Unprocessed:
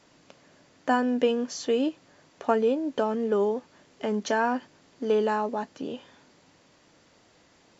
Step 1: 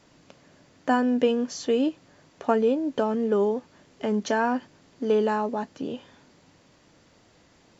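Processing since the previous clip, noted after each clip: low shelf 210 Hz +7 dB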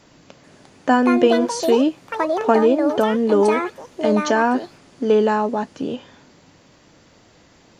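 echoes that change speed 0.439 s, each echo +6 st, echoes 2, each echo -6 dB; gain +6.5 dB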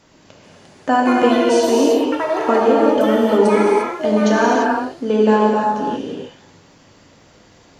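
non-linear reverb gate 0.37 s flat, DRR -3.5 dB; gain -2 dB

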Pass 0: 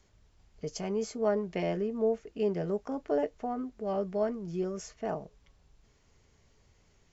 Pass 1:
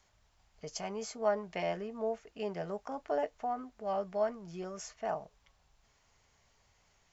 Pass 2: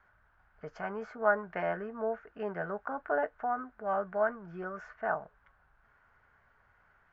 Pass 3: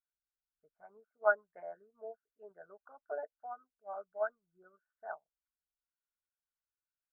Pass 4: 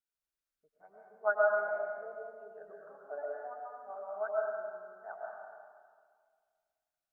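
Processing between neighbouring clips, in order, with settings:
resonant low shelf 540 Hz -8 dB, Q 1.5
synth low-pass 1500 Hz, resonance Q 6.3
formant sharpening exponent 2; upward expander 2.5:1, over -49 dBFS
reverb RT60 1.9 s, pre-delay 80 ms, DRR -3.5 dB; gain -2.5 dB

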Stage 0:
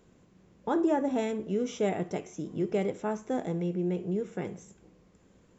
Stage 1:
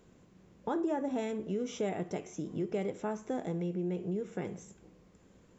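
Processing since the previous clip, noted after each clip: compressor 2:1, threshold -34 dBFS, peak gain reduction 7 dB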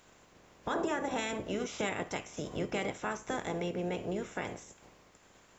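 spectral limiter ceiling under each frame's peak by 20 dB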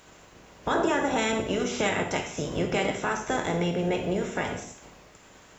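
non-linear reverb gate 0.22 s falling, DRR 3 dB; gain +7 dB

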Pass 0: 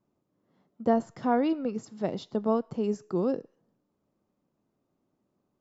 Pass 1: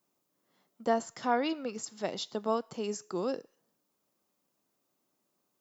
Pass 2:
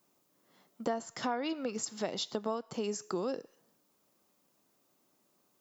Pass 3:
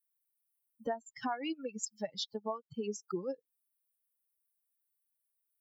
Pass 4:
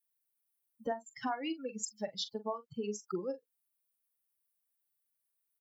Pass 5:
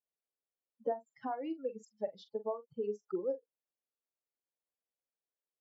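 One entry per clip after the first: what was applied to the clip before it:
tilt +4 dB/oct
compressor 4:1, threshold -38 dBFS, peak gain reduction 13.5 dB; gain +6 dB
per-bin expansion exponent 3; gain +2 dB
doubler 43 ms -13 dB
band-pass 490 Hz, Q 1.7; gain +4 dB

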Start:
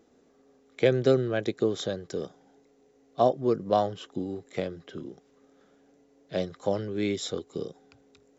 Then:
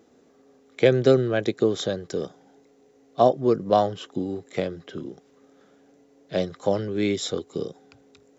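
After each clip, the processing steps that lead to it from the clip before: HPF 62 Hz; gain +4.5 dB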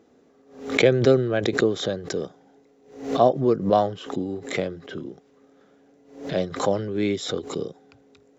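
high shelf 5700 Hz -8 dB; backwards sustainer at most 110 dB/s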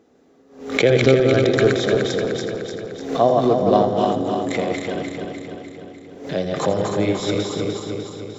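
regenerating reverse delay 0.15 s, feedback 75%, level -3 dB; split-band echo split 470 Hz, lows 0.396 s, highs 84 ms, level -11.5 dB; gain +1 dB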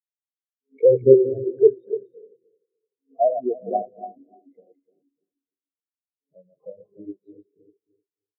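spectral expander 4:1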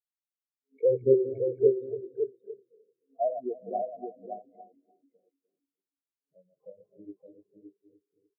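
echo 0.567 s -6.5 dB; gain -9 dB

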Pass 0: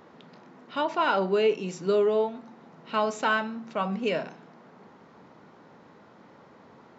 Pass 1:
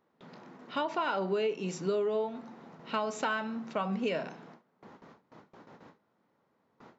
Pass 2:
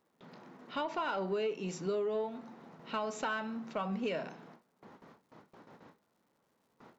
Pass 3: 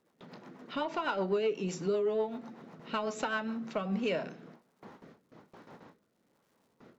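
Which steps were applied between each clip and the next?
gate with hold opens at -42 dBFS; compressor 5:1, threshold -28 dBFS, peak gain reduction 9 dB
crackle 330/s -64 dBFS; in parallel at -3.5 dB: soft clip -27.5 dBFS, distortion -14 dB; on the sum: gain -7 dB
rotary speaker horn 8 Hz, later 1.2 Hz, at 3.17; gain +5 dB

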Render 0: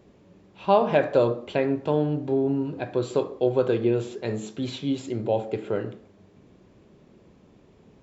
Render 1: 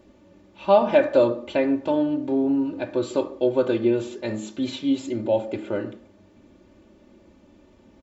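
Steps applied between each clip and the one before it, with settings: comb 3.4 ms, depth 77%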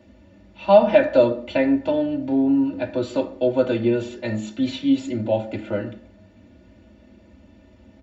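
reverb RT60 0.10 s, pre-delay 3 ms, DRR 6.5 dB; gain -5 dB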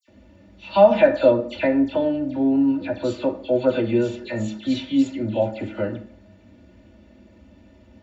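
dispersion lows, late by 83 ms, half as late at 2500 Hz

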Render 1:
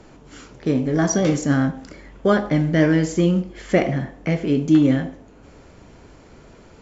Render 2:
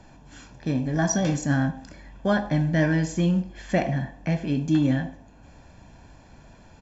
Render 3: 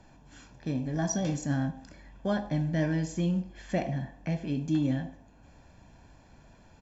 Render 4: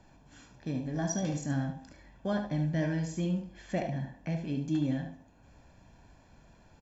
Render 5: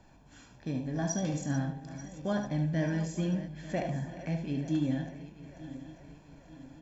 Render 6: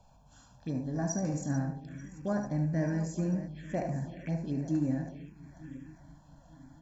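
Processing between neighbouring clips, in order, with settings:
comb 1.2 ms, depth 62%; gain -5 dB
dynamic EQ 1500 Hz, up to -5 dB, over -41 dBFS, Q 1.2; gain -6 dB
echo 73 ms -8.5 dB; gain -3 dB
regenerating reverse delay 0.444 s, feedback 69%, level -14 dB
envelope phaser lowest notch 300 Hz, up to 3300 Hz, full sweep at -30 dBFS

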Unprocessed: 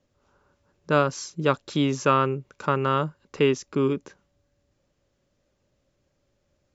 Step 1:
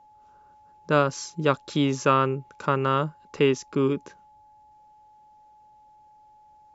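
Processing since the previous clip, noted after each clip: whine 850 Hz -52 dBFS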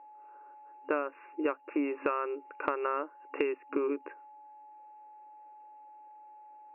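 FFT band-pass 270–2800 Hz; compressor 12:1, threshold -29 dBFS, peak gain reduction 15 dB; gain +2 dB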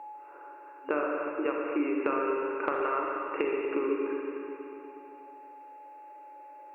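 spring tank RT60 2.3 s, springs 34/40/60 ms, chirp 50 ms, DRR -1 dB; three-band squash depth 40%

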